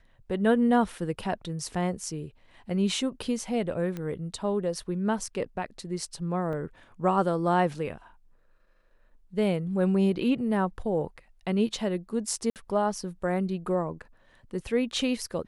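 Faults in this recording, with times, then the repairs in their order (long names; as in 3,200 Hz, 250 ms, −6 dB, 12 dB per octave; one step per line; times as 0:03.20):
0:03.97: click −22 dBFS
0:06.53: drop-out 2.6 ms
0:12.50–0:12.56: drop-out 58 ms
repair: click removal
repair the gap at 0:06.53, 2.6 ms
repair the gap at 0:12.50, 58 ms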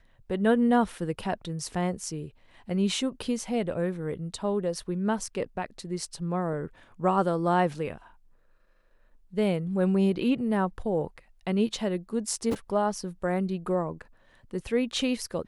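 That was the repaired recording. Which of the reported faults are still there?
none of them is left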